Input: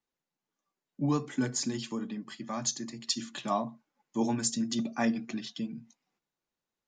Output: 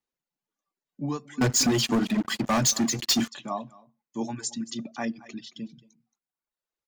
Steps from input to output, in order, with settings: delay 224 ms -12.5 dB; reverb removal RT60 1 s; 1.41–3.28 s: waveshaping leveller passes 5; trim -1.5 dB

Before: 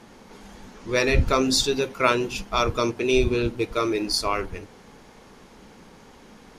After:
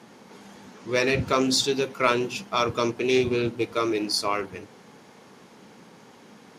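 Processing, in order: high-pass 110 Hz 24 dB/octave; in parallel at -9 dB: overload inside the chain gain 14.5 dB; on the sum: loudspeaker Doppler distortion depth 0.11 ms; trim -3.5 dB

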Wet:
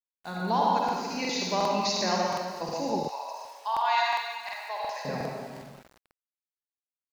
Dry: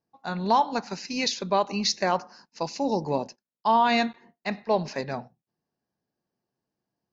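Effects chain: reverberation RT60 1.9 s, pre-delay 47 ms, DRR -3.5 dB; small samples zeroed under -40.5 dBFS; 3.03–5.05 s: high-pass 810 Hz 24 dB/octave; crackling interface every 0.36 s, samples 2048, repeat, from 0.84 s; trim -6.5 dB

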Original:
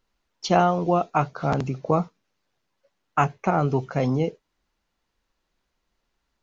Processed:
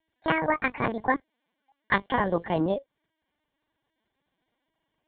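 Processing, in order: gliding tape speed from 189% -> 64%; LPC vocoder at 8 kHz pitch kept; comb of notches 1.3 kHz

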